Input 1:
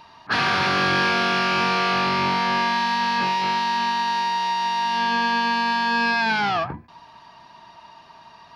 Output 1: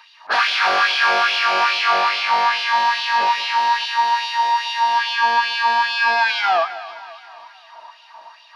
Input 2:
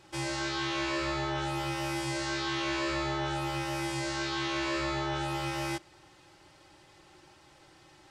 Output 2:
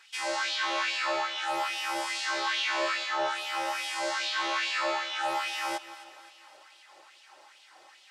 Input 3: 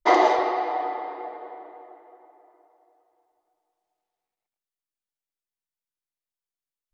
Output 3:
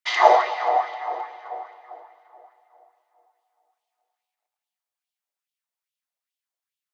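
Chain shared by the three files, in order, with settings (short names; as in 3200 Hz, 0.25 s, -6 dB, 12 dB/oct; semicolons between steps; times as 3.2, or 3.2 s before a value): LFO high-pass sine 2.4 Hz 560–3100 Hz; split-band echo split 760 Hz, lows 0.174 s, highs 0.264 s, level -15 dB; gain +1.5 dB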